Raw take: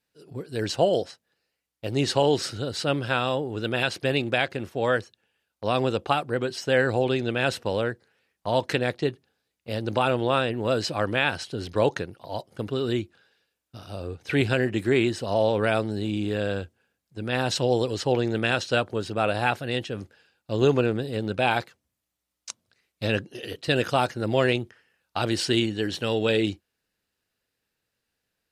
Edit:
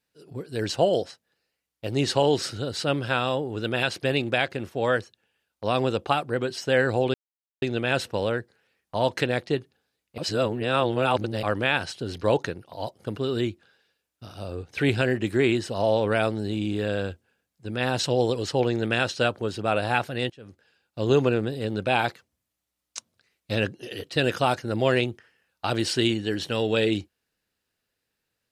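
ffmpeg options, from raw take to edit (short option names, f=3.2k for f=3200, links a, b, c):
-filter_complex "[0:a]asplit=5[a][b][c][d][e];[a]atrim=end=7.14,asetpts=PTS-STARTPTS,afade=t=out:st=7.136:d=0.004:c=hsin,apad=pad_dur=0.48[f];[b]atrim=start=7.14:end=9.702,asetpts=PTS-STARTPTS,afade=t=in:d=0.004:c=hsin[g];[c]atrim=start=9.698:end=10.952,asetpts=PTS-STARTPTS,areverse[h];[d]atrim=start=10.948:end=19.82,asetpts=PTS-STARTPTS,afade=t=out:st=8.868:d=0.004:c=hsin:silence=0.0749894[i];[e]atrim=start=19.82,asetpts=PTS-STARTPTS,afade=t=in:d=0.7:silence=0.0749894[j];[f][g]concat=n=2:v=0:a=1[k];[k][h]acrossfade=d=0.004:c1=hsin:c2=hsin[l];[i][j]concat=n=2:v=0:a=1[m];[l][m]acrossfade=d=0.004:c1=hsin:c2=hsin"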